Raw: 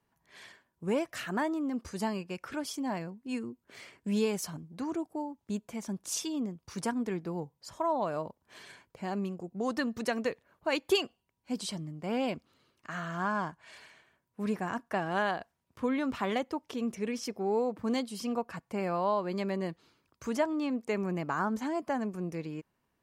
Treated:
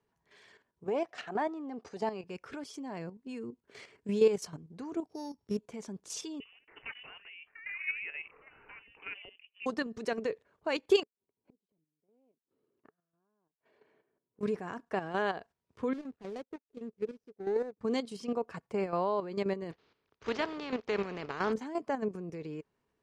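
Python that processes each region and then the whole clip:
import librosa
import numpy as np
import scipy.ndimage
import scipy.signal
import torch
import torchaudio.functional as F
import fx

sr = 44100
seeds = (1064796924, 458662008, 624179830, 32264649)

y = fx.chain(x, sr, fx.halfwave_gain(db=-3.0),
    fx.bandpass_edges(low_hz=200.0, high_hz=5800.0),
    fx.peak_eq(hz=750.0, db=12.5, octaves=0.36), at=(0.84, 2.24))
y = fx.chain(y, sr, fx.sample_sort(block=8),
    fx.peak_eq(hz=91.0, db=4.0, octaves=2.0), at=(5.07, 5.57))
y = fx.chain(y, sr, fx.highpass(hz=750.0, slope=12),
    fx.echo_pitch(ms=81, semitones=3, count=2, db_per_echo=-6.0),
    fx.freq_invert(carrier_hz=3200), at=(6.4, 9.66))
y = fx.chain(y, sr, fx.bandpass_q(hz=330.0, q=1.1),
    fx.gate_flip(shuts_db=-42.0, range_db=-37), at=(11.03, 14.41))
y = fx.chain(y, sr, fx.median_filter(points=41),
    fx.high_shelf(hz=6000.0, db=4.0),
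    fx.upward_expand(threshold_db=-48.0, expansion=2.5), at=(15.93, 17.81))
y = fx.spec_flatten(y, sr, power=0.47, at=(19.7, 21.52), fade=0.02)
y = fx.bessel_lowpass(y, sr, hz=3400.0, order=6, at=(19.7, 21.52), fade=0.02)
y = scipy.signal.sosfilt(scipy.signal.butter(2, 7600.0, 'lowpass', fs=sr, output='sos'), y)
y = fx.peak_eq(y, sr, hz=430.0, db=10.5, octaves=0.28)
y = fx.level_steps(y, sr, step_db=10)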